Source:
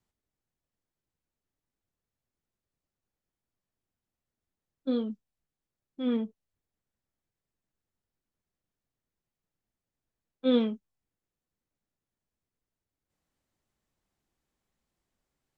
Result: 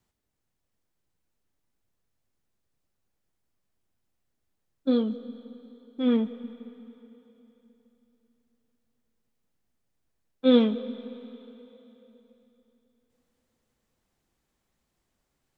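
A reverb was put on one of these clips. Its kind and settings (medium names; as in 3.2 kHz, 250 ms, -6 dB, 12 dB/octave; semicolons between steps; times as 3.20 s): algorithmic reverb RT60 3.5 s, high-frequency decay 0.95×, pre-delay 70 ms, DRR 14 dB; trim +5.5 dB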